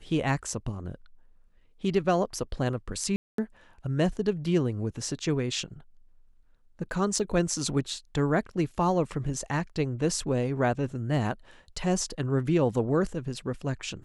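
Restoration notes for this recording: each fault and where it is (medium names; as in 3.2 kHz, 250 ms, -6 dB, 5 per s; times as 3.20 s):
3.16–3.38 s: dropout 223 ms
7.19 s: dropout 4.1 ms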